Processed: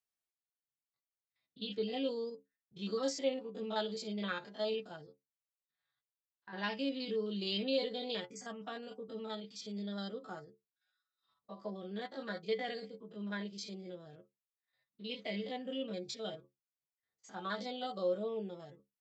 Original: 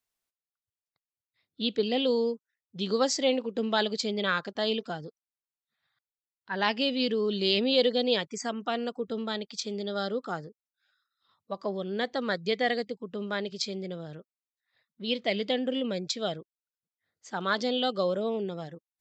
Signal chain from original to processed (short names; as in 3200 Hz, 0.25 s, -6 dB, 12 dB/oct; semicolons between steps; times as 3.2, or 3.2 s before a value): stepped spectrum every 50 ms; metallic resonator 65 Hz, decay 0.23 s, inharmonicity 0.008; gain -2.5 dB